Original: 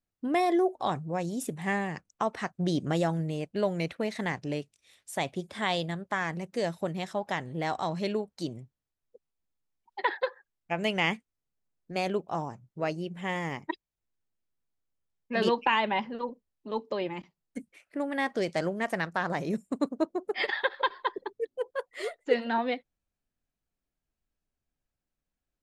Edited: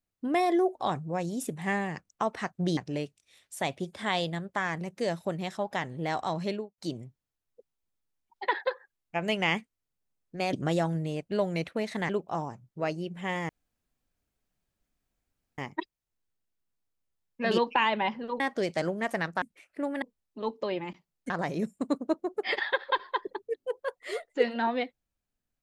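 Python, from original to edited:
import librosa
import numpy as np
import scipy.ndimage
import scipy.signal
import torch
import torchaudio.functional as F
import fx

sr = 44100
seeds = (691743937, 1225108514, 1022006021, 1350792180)

y = fx.studio_fade_out(x, sr, start_s=8.0, length_s=0.34)
y = fx.edit(y, sr, fx.move(start_s=2.77, length_s=1.56, to_s=12.09),
    fx.insert_room_tone(at_s=13.49, length_s=2.09),
    fx.swap(start_s=16.31, length_s=1.28, other_s=18.19, other_length_s=1.02), tone=tone)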